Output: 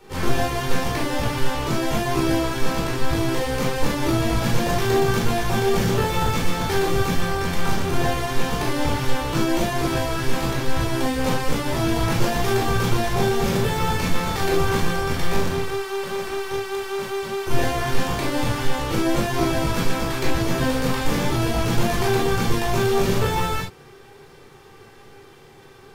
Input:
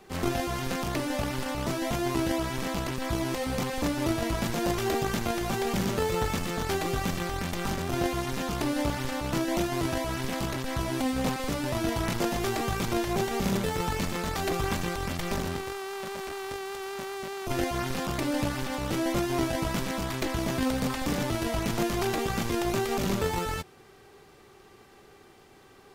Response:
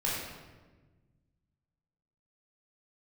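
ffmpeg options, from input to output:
-filter_complex "[0:a]acontrast=77[a];[1:a]atrim=start_sample=2205,atrim=end_sample=3528[b];[a][b]afir=irnorm=-1:irlink=0,volume=-5.5dB"

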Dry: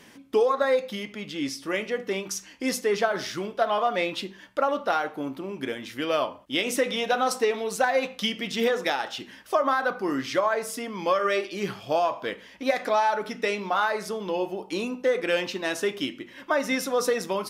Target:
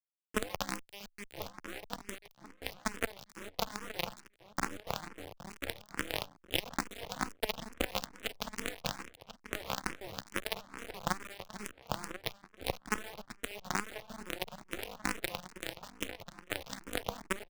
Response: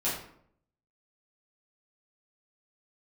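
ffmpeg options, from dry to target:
-filter_complex "[0:a]equalizer=f=180:w=2.6:g=2,bandreject=f=400:w=12,acrossover=split=360|1800[a][b][c];[a]acompressor=threshold=-36dB:ratio=4[d];[b]acompressor=threshold=-37dB:ratio=4[e];[c]acompressor=threshold=-37dB:ratio=4[f];[d][e][f]amix=inputs=3:normalize=0,tremolo=f=200:d=0.857,adynamicsmooth=sensitivity=5:basefreq=2.6k,acrusher=bits=3:dc=4:mix=0:aa=0.000001,aeval=exprs='0.112*(cos(1*acos(clip(val(0)/0.112,-1,1)))-cos(1*PI/2))+0.0158*(cos(8*acos(clip(val(0)/0.112,-1,1)))-cos(8*PI/2))':c=same,asplit=2[g][h];[h]adelay=1039,lowpass=f=3.8k:p=1,volume=-11dB,asplit=2[i][j];[j]adelay=1039,lowpass=f=3.8k:p=1,volume=0.32,asplit=2[k][l];[l]adelay=1039,lowpass=f=3.8k:p=1,volume=0.32[m];[i][k][m]amix=inputs=3:normalize=0[n];[g][n]amix=inputs=2:normalize=0,asplit=2[o][p];[p]afreqshift=2.3[q];[o][q]amix=inputs=2:normalize=1,volume=11.5dB"

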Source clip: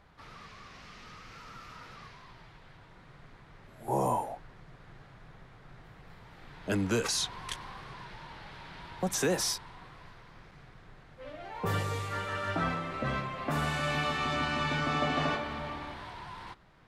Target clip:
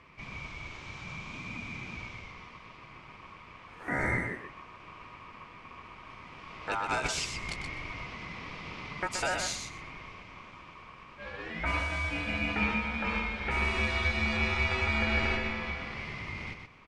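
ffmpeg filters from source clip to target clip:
-filter_complex "[0:a]lowpass=f=8.1k:w=0.5412,lowpass=f=8.1k:w=1.3066,equalizer=f=1.2k:w=2.7:g=11.5,asplit=2[a][b];[b]acompressor=threshold=-36dB:ratio=6,volume=2.5dB[c];[a][c]amix=inputs=2:normalize=0,aecho=1:1:125|250|375:0.473|0.0757|0.0121,aeval=exprs='val(0)*sin(2*PI*1100*n/s)':c=same,volume=-4dB"

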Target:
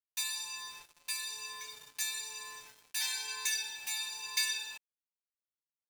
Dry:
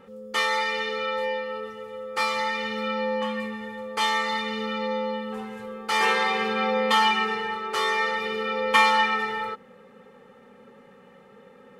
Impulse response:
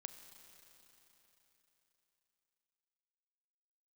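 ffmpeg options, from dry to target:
-af "aderivative,acrusher=bits=7:mix=0:aa=0.5,asetrate=88200,aresample=44100"

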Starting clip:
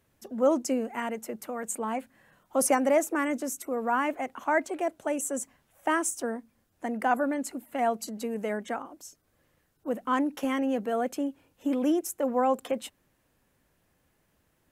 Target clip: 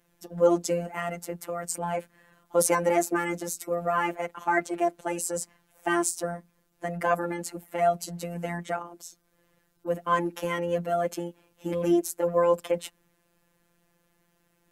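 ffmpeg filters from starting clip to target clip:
-filter_complex "[0:a]asplit=2[a][b];[b]asetrate=29433,aresample=44100,atempo=1.49831,volume=-14dB[c];[a][c]amix=inputs=2:normalize=0,afftfilt=real='hypot(re,im)*cos(PI*b)':imag='0':win_size=1024:overlap=0.75,volume=5dB"

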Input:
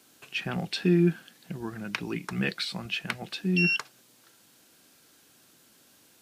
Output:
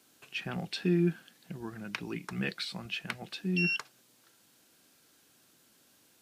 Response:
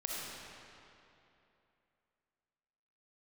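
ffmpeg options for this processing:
-af "volume=-5dB"

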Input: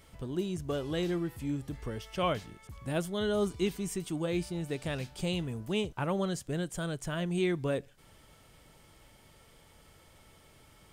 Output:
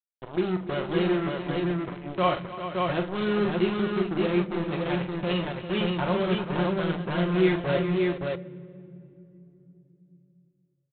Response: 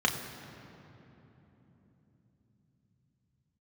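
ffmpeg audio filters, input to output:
-filter_complex "[0:a]highpass=97,aecho=1:1:5.6:0.95,bandreject=f=160.5:t=h:w=4,bandreject=f=321:t=h:w=4,bandreject=f=481.5:t=h:w=4,bandreject=f=642:t=h:w=4,bandreject=f=802.5:t=h:w=4,bandreject=f=963:t=h:w=4,bandreject=f=1.1235k:t=h:w=4,bandreject=f=1.284k:t=h:w=4,bandreject=f=1.4445k:t=h:w=4,bandreject=f=1.605k:t=h:w=4,bandreject=f=1.7655k:t=h:w=4,bandreject=f=1.926k:t=h:w=4,bandreject=f=2.0865k:t=h:w=4,bandreject=f=2.247k:t=h:w=4,bandreject=f=2.4075k:t=h:w=4,bandreject=f=2.568k:t=h:w=4,bandreject=f=2.7285k:t=h:w=4,bandreject=f=2.889k:t=h:w=4,bandreject=f=3.0495k:t=h:w=4,bandreject=f=3.21k:t=h:w=4,bandreject=f=3.3705k:t=h:w=4,bandreject=f=3.531k:t=h:w=4,bandreject=f=3.6915k:t=h:w=4,bandreject=f=3.852k:t=h:w=4,bandreject=f=4.0125k:t=h:w=4,bandreject=f=4.173k:t=h:w=4,bandreject=f=4.3335k:t=h:w=4,bandreject=f=4.494k:t=h:w=4,bandreject=f=4.6545k:t=h:w=4,bandreject=f=4.815k:t=h:w=4,bandreject=f=4.9755k:t=h:w=4,aresample=8000,acrusher=bits=4:mix=0:aa=0.5,aresample=44100,aecho=1:1:43|292|396|570:0.422|0.158|0.299|0.708,asplit=2[a][b];[1:a]atrim=start_sample=2205,asetrate=57330,aresample=44100[c];[b][c]afir=irnorm=-1:irlink=0,volume=-20.5dB[d];[a][d]amix=inputs=2:normalize=0"

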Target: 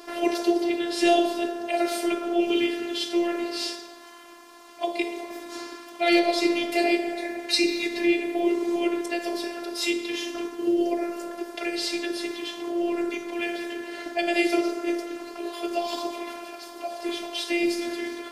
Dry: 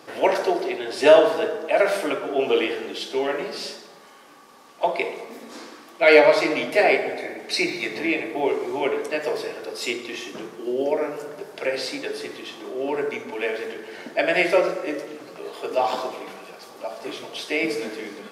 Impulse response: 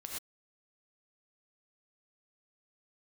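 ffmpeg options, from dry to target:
-filter_complex "[0:a]acrossover=split=410|3000[a][b][c];[b]acompressor=threshold=-35dB:ratio=5[d];[a][d][c]amix=inputs=3:normalize=0,afftfilt=real='hypot(re,im)*cos(PI*b)':imag='0':win_size=512:overlap=0.75,volume=6dB"

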